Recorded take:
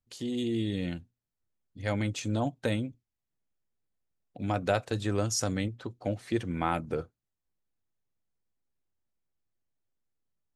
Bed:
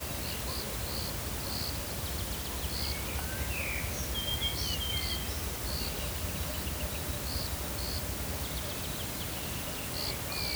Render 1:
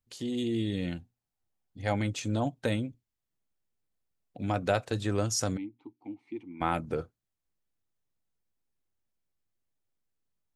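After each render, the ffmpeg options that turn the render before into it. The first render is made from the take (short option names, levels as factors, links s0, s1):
-filter_complex "[0:a]asettb=1/sr,asplit=3[s0][s1][s2];[s0]atrim=end=0.984[s3];[s1]atrim=start=0.98:end=1.98,asetpts=PTS-STARTPTS,afade=t=in:d=0.004:c=qsin,afade=t=out:st=0.996:d=0.004:c=qsin,equalizer=f=780:t=o:w=0.31:g=10[s4];[s2]atrim=start=1.976[s5];[s3][s4]acrossfade=d=0.004:c1=hsin:c2=qsin[s6];[s6][s5]acrossfade=d=0.004:c1=qsin:c2=hsin,asplit=3[s7][s8][s9];[s7]afade=t=out:st=5.56:d=0.02[s10];[s8]asplit=3[s11][s12][s13];[s11]bandpass=f=300:t=q:w=8,volume=1[s14];[s12]bandpass=f=870:t=q:w=8,volume=0.501[s15];[s13]bandpass=f=2240:t=q:w=8,volume=0.355[s16];[s14][s15][s16]amix=inputs=3:normalize=0,afade=t=in:st=5.56:d=0.02,afade=t=out:st=6.6:d=0.02[s17];[s9]afade=t=in:st=6.6:d=0.02[s18];[s10][s17][s18]amix=inputs=3:normalize=0"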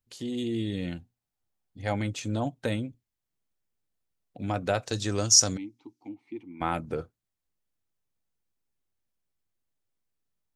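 -filter_complex "[0:a]asettb=1/sr,asplit=3[s0][s1][s2];[s0]atrim=end=4.854[s3];[s1]atrim=start=4.85:end=6.09,asetpts=PTS-STARTPTS,afade=t=in:d=0.004:c=qsin,afade=t=out:st=1.236:d=0.004:c=qsin,equalizer=f=5800:w=1.2:g=15[s4];[s2]atrim=start=6.086[s5];[s3][s4]acrossfade=d=0.004:c1=hsin:c2=qsin[s6];[s6][s5]acrossfade=d=0.004:c1=qsin:c2=hsin"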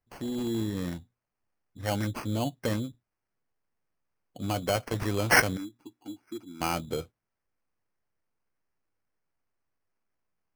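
-af "acrusher=samples=12:mix=1:aa=0.000001,asoftclip=type=tanh:threshold=0.266"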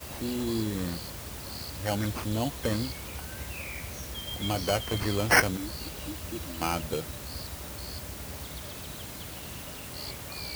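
-filter_complex "[1:a]volume=0.631[s0];[0:a][s0]amix=inputs=2:normalize=0"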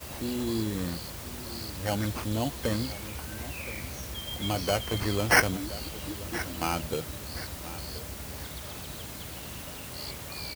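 -af "aecho=1:1:1024|2048|3072:0.178|0.064|0.023"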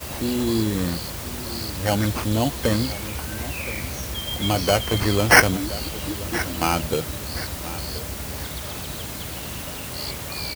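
-af "volume=2.51"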